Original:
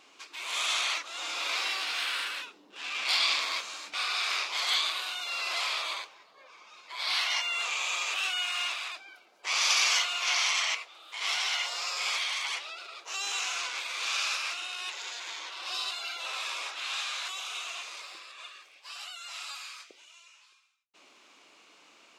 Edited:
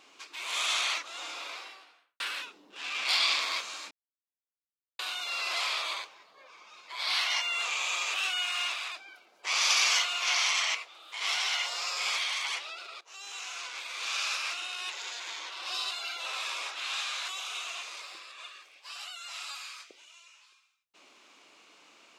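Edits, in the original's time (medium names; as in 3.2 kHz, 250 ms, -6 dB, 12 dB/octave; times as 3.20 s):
0.88–2.20 s: studio fade out
3.91–4.99 s: mute
13.01–14.52 s: fade in, from -15 dB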